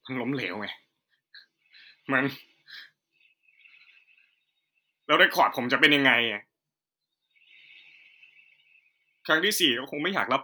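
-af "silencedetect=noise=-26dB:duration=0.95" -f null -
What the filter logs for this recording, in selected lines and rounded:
silence_start: 0.70
silence_end: 2.09 | silence_duration: 1.39
silence_start: 2.29
silence_end: 5.10 | silence_duration: 2.81
silence_start: 6.37
silence_end: 9.29 | silence_duration: 2.92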